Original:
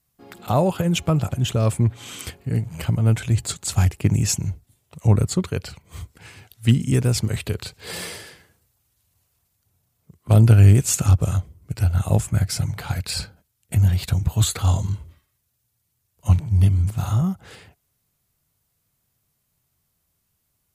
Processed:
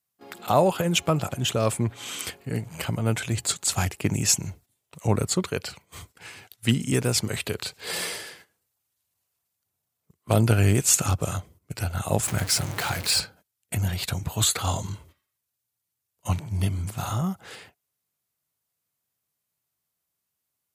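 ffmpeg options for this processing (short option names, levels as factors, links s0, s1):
-filter_complex "[0:a]asettb=1/sr,asplit=3[s0][s1][s2];[s0]atrim=end=12.234[s3];[s1]atrim=start=12.23:end=13.2,asetpts=PTS-STARTPTS,afade=t=in:d=0.004:c=qsin,afade=t=out:st=0.966:d=0.004:c=qsin,aeval=exprs='val(0)+0.5*0.0398*sgn(val(0))':c=same[s4];[s2]atrim=start=13.196[s5];[s3][s4]acrossfade=d=0.004:c1=hsin:c2=qsin[s6];[s6][s5]acrossfade=d=0.004:c1=qsin:c2=hsin,highpass=f=390:p=1,agate=range=0.282:threshold=0.00251:ratio=16:detection=peak,volume=1.33"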